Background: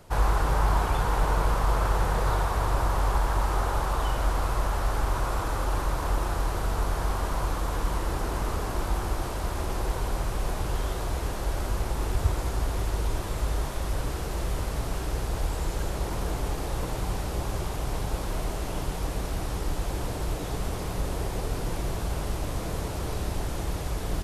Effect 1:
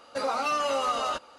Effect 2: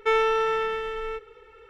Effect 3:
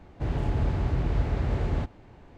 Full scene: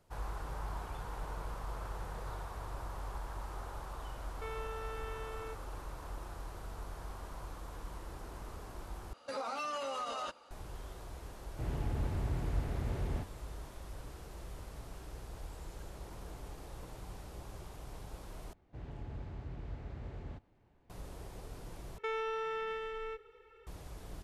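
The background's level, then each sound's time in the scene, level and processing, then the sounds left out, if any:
background -17.5 dB
4.36 add 2 -14 dB + limiter -22.5 dBFS
9.13 replace with 1 -7.5 dB + limiter -23 dBFS
11.38 add 3 -9.5 dB
18.53 replace with 3 -18 dB
21.98 replace with 2 -9.5 dB + compressor, threshold -23 dBFS

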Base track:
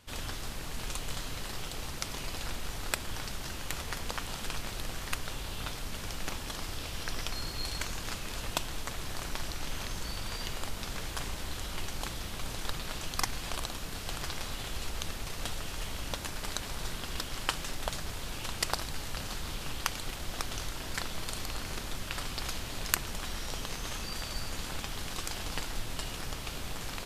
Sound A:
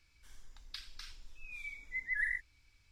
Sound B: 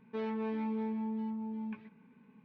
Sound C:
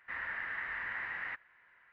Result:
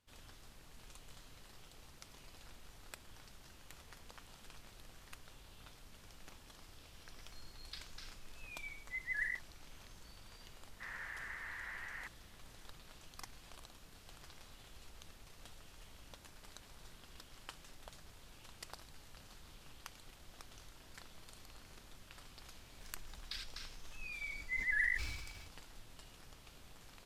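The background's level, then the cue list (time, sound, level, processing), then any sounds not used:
base track -19.5 dB
6.99 add A -4 dB
10.72 add C -8 dB + steep high-pass 330 Hz 96 dB/oct
22.57 add A -0.5 dB + sustainer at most 38 dB/s
not used: B

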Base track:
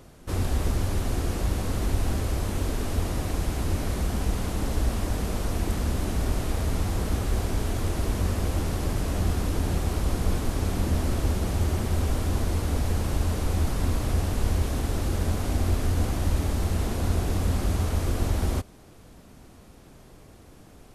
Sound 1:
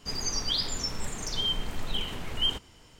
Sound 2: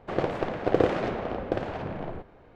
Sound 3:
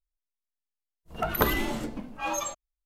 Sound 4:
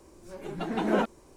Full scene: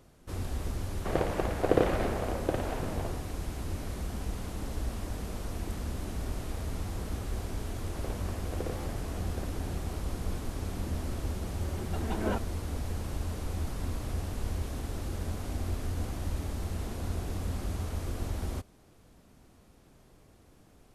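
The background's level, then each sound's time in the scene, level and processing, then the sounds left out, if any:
base track -9 dB
0.97 add 2 -2.5 dB
7.86 add 2 -16.5 dB + stuck buffer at 0.9
11.33 add 4 -7 dB
not used: 1, 3

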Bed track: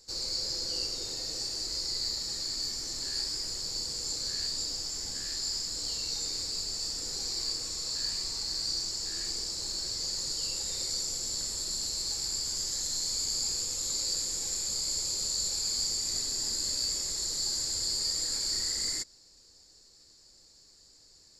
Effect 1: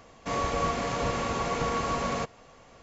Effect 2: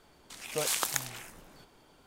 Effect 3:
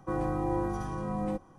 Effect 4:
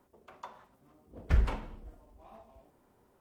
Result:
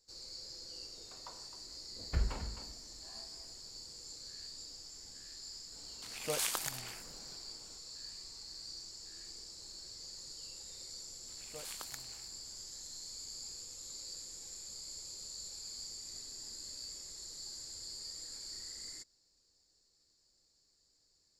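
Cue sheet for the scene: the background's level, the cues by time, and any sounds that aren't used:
bed track -15 dB
0.83 add 4 -7 dB + echo 0.262 s -11 dB
5.72 add 2 -4 dB + limiter -12 dBFS
10.98 add 2 -16.5 dB
not used: 1, 3

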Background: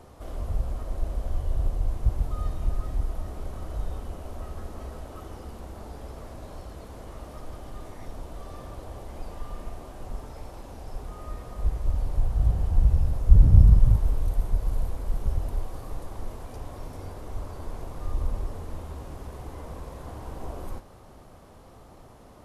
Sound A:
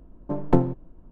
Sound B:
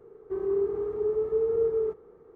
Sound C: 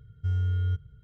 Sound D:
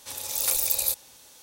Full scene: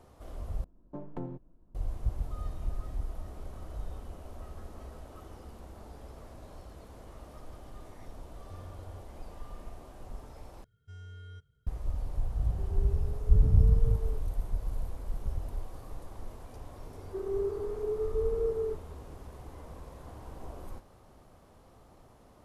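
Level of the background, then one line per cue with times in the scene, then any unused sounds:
background -7.5 dB
0.64 replace with A -12.5 dB + limiter -16 dBFS
8.26 add C -16 dB + compressor 2:1, threshold -34 dBFS
10.64 replace with C -9 dB + tone controls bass -12 dB, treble +6 dB
12.27 add B -15.5 dB + HPF 430 Hz
16.83 add B -5.5 dB
not used: D

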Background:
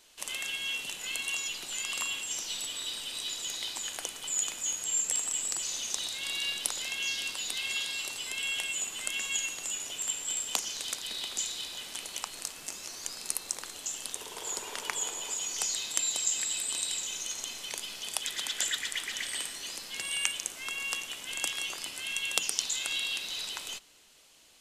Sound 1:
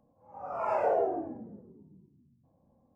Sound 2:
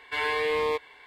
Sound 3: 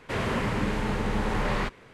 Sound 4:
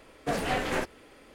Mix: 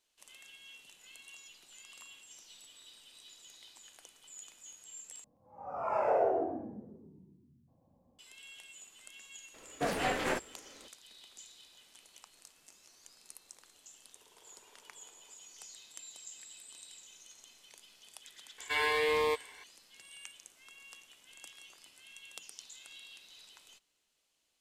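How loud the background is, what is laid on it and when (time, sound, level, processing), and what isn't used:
background -19.5 dB
5.24 replace with 1 -2.5 dB + echo 0.128 s -4.5 dB
9.54 add 4 -2.5 dB + low shelf 160 Hz -7 dB
18.58 add 2 -3.5 dB + high shelf 5700 Hz +9.5 dB
not used: 3

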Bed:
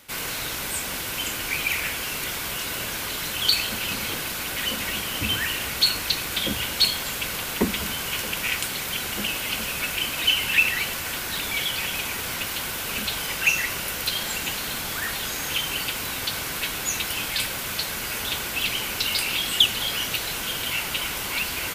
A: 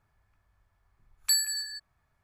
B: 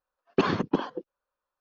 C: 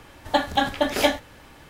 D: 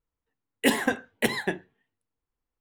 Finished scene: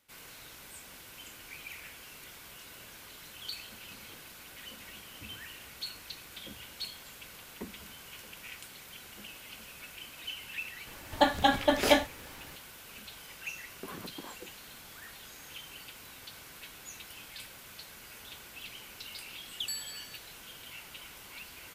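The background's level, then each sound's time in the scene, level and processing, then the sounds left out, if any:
bed -20 dB
10.87 add C -3 dB
13.45 add B -11.5 dB + compressor, threshold -28 dBFS
18.39 add A -13 dB
not used: D

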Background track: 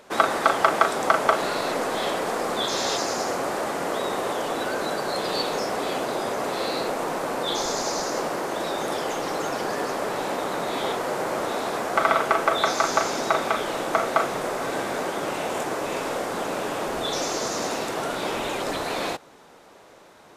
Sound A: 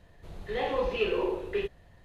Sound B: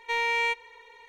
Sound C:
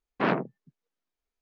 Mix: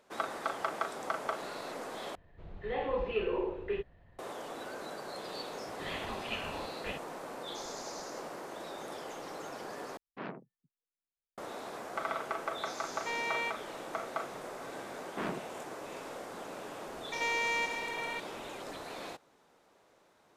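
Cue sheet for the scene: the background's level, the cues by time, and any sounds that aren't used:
background track -15.5 dB
2.15 replace with A -4 dB + LPF 2600 Hz
5.31 add A -1 dB + spectral gate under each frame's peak -15 dB weak
9.97 replace with C -17 dB
12.97 add B -9 dB
14.97 add C -17.5 dB + sample leveller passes 2
17.12 add B -6.5 dB + per-bin compression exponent 0.2

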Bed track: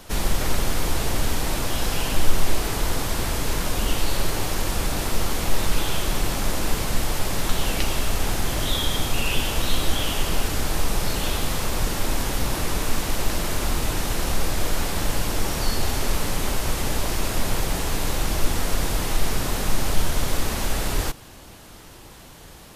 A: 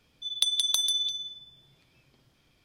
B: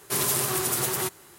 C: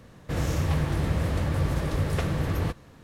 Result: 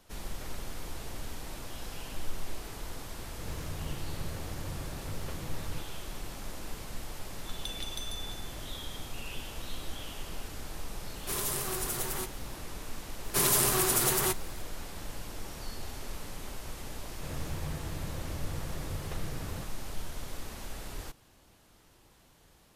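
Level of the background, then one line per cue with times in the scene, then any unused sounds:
bed track -17 dB
3.1 add C -15.5 dB + vibrato 7.1 Hz 37 cents
7.23 add A -15.5 dB
11.17 add B -8.5 dB
13.24 add B -0.5 dB
16.93 add C -13.5 dB

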